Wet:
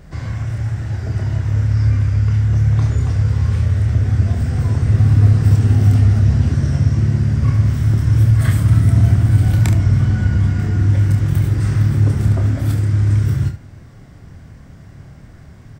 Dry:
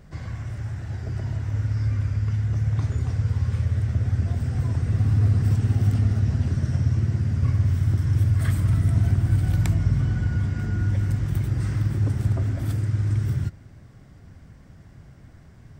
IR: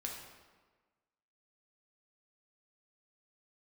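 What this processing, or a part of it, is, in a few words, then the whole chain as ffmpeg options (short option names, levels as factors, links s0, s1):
slapback doubling: -filter_complex "[0:a]asplit=3[s0][s1][s2];[s1]adelay=28,volume=0.501[s3];[s2]adelay=71,volume=0.266[s4];[s0][s3][s4]amix=inputs=3:normalize=0,volume=2.24"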